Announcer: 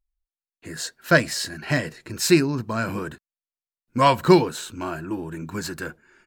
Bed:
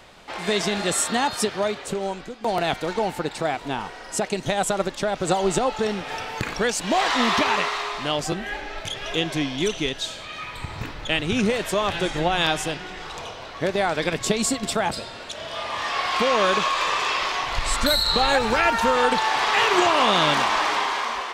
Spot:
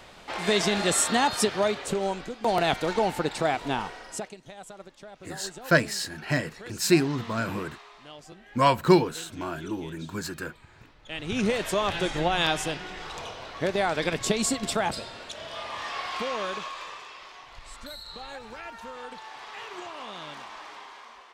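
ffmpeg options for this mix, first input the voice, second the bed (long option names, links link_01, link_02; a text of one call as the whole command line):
ffmpeg -i stem1.wav -i stem2.wav -filter_complex "[0:a]adelay=4600,volume=-3.5dB[link_01];[1:a]volume=17.5dB,afade=type=out:start_time=3.78:duration=0.58:silence=0.0944061,afade=type=in:start_time=11.04:duration=0.46:silence=0.125893,afade=type=out:start_time=14.79:duration=2.3:silence=0.125893[link_02];[link_01][link_02]amix=inputs=2:normalize=0" out.wav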